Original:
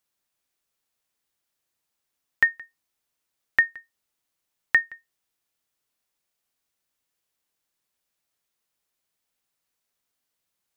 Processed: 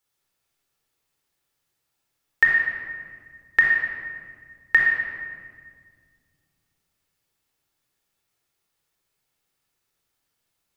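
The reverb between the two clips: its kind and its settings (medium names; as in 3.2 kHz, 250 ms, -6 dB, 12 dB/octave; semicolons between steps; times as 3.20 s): simulated room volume 3100 m³, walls mixed, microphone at 4.2 m; trim -1 dB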